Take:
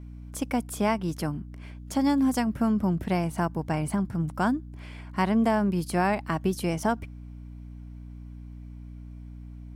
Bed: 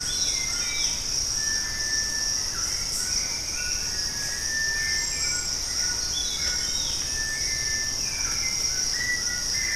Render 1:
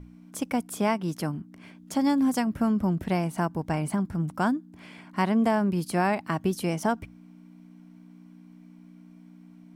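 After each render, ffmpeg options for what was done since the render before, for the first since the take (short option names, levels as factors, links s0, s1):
-af "bandreject=f=60:t=h:w=6,bandreject=f=120:t=h:w=6"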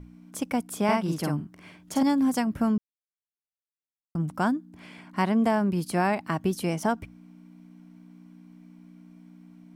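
-filter_complex "[0:a]asettb=1/sr,asplit=3[s0][s1][s2];[s0]atrim=end=0.844[s3];[s1]atrim=start=0.84:end=2.03,asetpts=PTS-STARTPTS,afade=t=in:d=0.004:c=qsin,afade=t=out:st=1.186:d=0.004:c=qsin,asplit=2[s4][s5];[s5]adelay=48,volume=0.794[s6];[s4][s6]amix=inputs=2:normalize=0,atrim=end_sample=52479[s7];[s2]atrim=start=2.026[s8];[s3][s7]acrossfade=d=0.004:c1=hsin:c2=qsin[s9];[s9][s8]acrossfade=d=0.004:c1=qsin:c2=hsin,asplit=3[s10][s11][s12];[s10]atrim=end=2.78,asetpts=PTS-STARTPTS,afade=t=out:st=2.776:d=0.004:c=hsin[s13];[s11]atrim=start=2.78:end=4.15,asetpts=PTS-STARTPTS,volume=0[s14];[s12]atrim=start=4.15,asetpts=PTS-STARTPTS,afade=t=in:d=0.004:c=hsin[s15];[s13][s14][s15]concat=n=3:v=0:a=1"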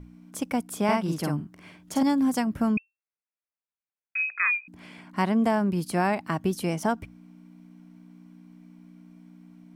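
-filter_complex "[0:a]asettb=1/sr,asplit=3[s0][s1][s2];[s0]atrim=end=2.774[s3];[s1]atrim=start=2.77:end=4.68,asetpts=PTS-STARTPTS,afade=t=in:d=0.004:c=qsin,afade=t=out:st=1.906:d=0.004:c=qsin,lowpass=f=2300:t=q:w=0.5098,lowpass=f=2300:t=q:w=0.6013,lowpass=f=2300:t=q:w=0.9,lowpass=f=2300:t=q:w=2.563,afreqshift=-2700[s4];[s2]atrim=start=4.676[s5];[s3][s4]acrossfade=d=0.004:c1=hsin:c2=qsin[s6];[s6][s5]acrossfade=d=0.004:c1=qsin:c2=hsin"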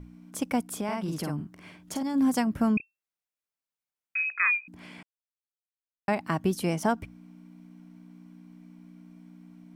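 -filter_complex "[0:a]asplit=3[s0][s1][s2];[s0]afade=t=out:st=0.78:d=0.02[s3];[s1]acompressor=threshold=0.0447:ratio=6:attack=3.2:release=140:knee=1:detection=peak,afade=t=in:st=0.78:d=0.02,afade=t=out:st=2.14:d=0.02[s4];[s2]afade=t=in:st=2.14:d=0.02[s5];[s3][s4][s5]amix=inputs=3:normalize=0,asettb=1/sr,asplit=3[s6][s7][s8];[s6]atrim=end=2.774[s9];[s7]atrim=start=2.77:end=4.32,asetpts=PTS-STARTPTS,afade=t=in:d=0.004:c=qsin,afade=t=out:st=1.546:d=0.004:c=qsin,asplit=2[s10][s11];[s11]adelay=29,volume=0.282[s12];[s10][s12]amix=inputs=2:normalize=0,atrim=end_sample=68355[s13];[s8]atrim=start=4.316[s14];[s9][s13]acrossfade=d=0.004:c1=hsin:c2=qsin[s15];[s15][s14]acrossfade=d=0.004:c1=qsin:c2=hsin,asplit=3[s16][s17][s18];[s16]atrim=end=5.03,asetpts=PTS-STARTPTS,afade=t=out:st=5.026:d=0.004:c=hsin[s19];[s17]atrim=start=5.03:end=6.08,asetpts=PTS-STARTPTS,volume=0[s20];[s18]atrim=start=6.08,asetpts=PTS-STARTPTS,afade=t=in:d=0.004:c=hsin[s21];[s19][s20][s21]concat=n=3:v=0:a=1"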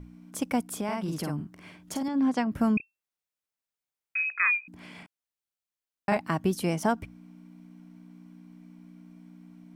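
-filter_complex "[0:a]asettb=1/sr,asplit=3[s0][s1][s2];[s0]atrim=end=2.084[s3];[s1]atrim=start=2.08:end=2.52,asetpts=PTS-STARTPTS,afade=t=in:d=0.004:c=qsin,afade=t=out:st=0.436:d=0.004:c=qsin,highpass=200,lowpass=3900[s4];[s2]atrim=start=2.516[s5];[s3][s4]acrossfade=d=0.004:c1=hsin:c2=qsin[s6];[s6][s5]acrossfade=d=0.004:c1=qsin:c2=hsin,asettb=1/sr,asplit=3[s7][s8][s9];[s7]atrim=end=4.914[s10];[s8]atrim=start=4.91:end=6.17,asetpts=PTS-STARTPTS,afade=t=in:d=0.004:c=qsin,afade=t=out:st=1.256:d=0.004:c=qsin,asplit=2[s11][s12];[s12]adelay=35,volume=0.708[s13];[s11][s13]amix=inputs=2:normalize=0,atrim=end_sample=55566[s14];[s9]atrim=start=6.166[s15];[s10][s14]acrossfade=d=0.004:c1=hsin:c2=qsin[s16];[s16][s15]acrossfade=d=0.004:c1=qsin:c2=hsin"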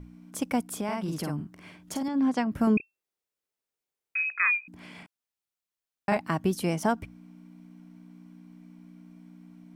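-filter_complex "[0:a]asettb=1/sr,asplit=3[s0][s1][s2];[s0]atrim=end=2.674[s3];[s1]atrim=start=2.67:end=4.23,asetpts=PTS-STARTPTS,afade=t=in:d=0.004:c=qsin,afade=t=out:st=1.556:d=0.004:c=qsin,equalizer=f=410:w=1.5:g=9[s4];[s2]atrim=start=4.226[s5];[s3][s4]acrossfade=d=0.004:c1=hsin:c2=qsin[s6];[s6][s5]acrossfade=d=0.004:c1=qsin:c2=hsin"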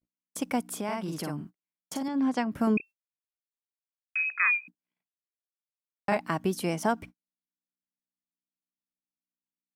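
-af "agate=range=0.002:threshold=0.01:ratio=16:detection=peak,lowshelf=f=110:g=-11.5"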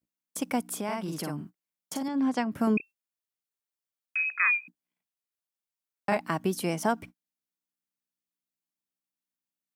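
-af "highpass=78,highshelf=f=8900:g=4"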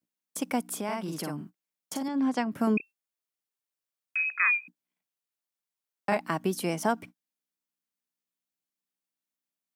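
-af "highpass=130"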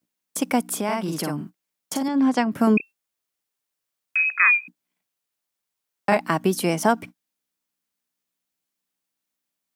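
-af "volume=2.37"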